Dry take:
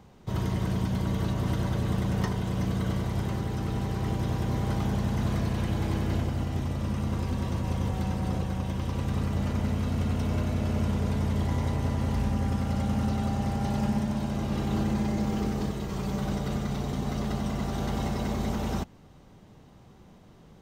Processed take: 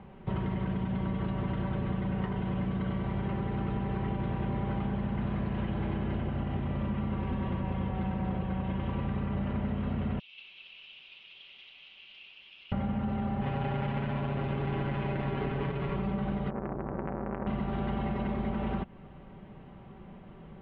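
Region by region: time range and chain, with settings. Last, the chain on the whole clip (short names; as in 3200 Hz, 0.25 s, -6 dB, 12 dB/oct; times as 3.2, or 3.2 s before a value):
10.19–12.72 steep high-pass 2500 Hz 72 dB/oct + companded quantiser 6-bit + lo-fi delay 0.192 s, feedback 55%, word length 10-bit, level -5 dB
13.41–15.96 LPF 2500 Hz + companded quantiser 4-bit + comb 7.2 ms, depth 77%
16.5–17.47 LPF 1100 Hz 24 dB/oct + core saturation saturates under 960 Hz
whole clip: steep low-pass 3000 Hz 36 dB/oct; comb 5.2 ms, depth 39%; compressor, threshold -32 dBFS; gain +3.5 dB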